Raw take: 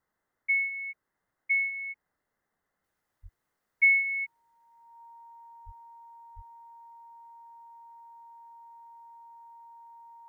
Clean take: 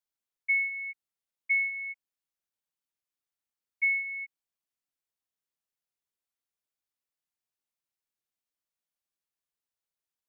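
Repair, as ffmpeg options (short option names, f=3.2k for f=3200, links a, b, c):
-filter_complex "[0:a]bandreject=f=930:w=30,asplit=3[a][b][c];[a]afade=t=out:st=3.22:d=0.02[d];[b]highpass=f=140:w=0.5412,highpass=f=140:w=1.3066,afade=t=in:st=3.22:d=0.02,afade=t=out:st=3.34:d=0.02[e];[c]afade=t=in:st=3.34:d=0.02[f];[d][e][f]amix=inputs=3:normalize=0,asplit=3[g][h][i];[g]afade=t=out:st=5.65:d=0.02[j];[h]highpass=f=140:w=0.5412,highpass=f=140:w=1.3066,afade=t=in:st=5.65:d=0.02,afade=t=out:st=5.77:d=0.02[k];[i]afade=t=in:st=5.77:d=0.02[l];[j][k][l]amix=inputs=3:normalize=0,asplit=3[m][n][o];[m]afade=t=out:st=6.35:d=0.02[p];[n]highpass=f=140:w=0.5412,highpass=f=140:w=1.3066,afade=t=in:st=6.35:d=0.02,afade=t=out:st=6.47:d=0.02[q];[o]afade=t=in:st=6.47:d=0.02[r];[p][q][r]amix=inputs=3:normalize=0,agate=range=-21dB:threshold=-75dB,asetnsamples=n=441:p=0,asendcmd='2.84 volume volume -5.5dB',volume=0dB"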